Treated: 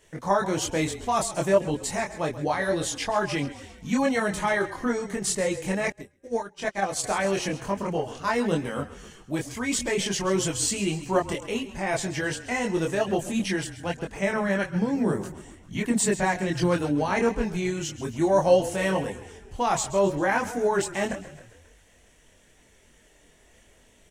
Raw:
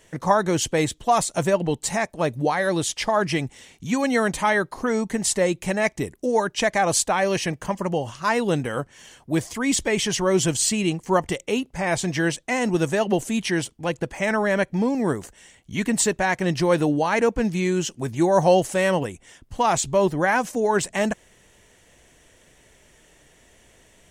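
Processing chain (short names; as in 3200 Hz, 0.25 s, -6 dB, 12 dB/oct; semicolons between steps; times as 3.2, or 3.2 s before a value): frequency-shifting echo 0.134 s, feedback 55%, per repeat -33 Hz, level -14.5 dB; chorus voices 6, 0.53 Hz, delay 23 ms, depth 2.8 ms; 5.92–7.04 upward expander 2.5:1, over -37 dBFS; gain -1 dB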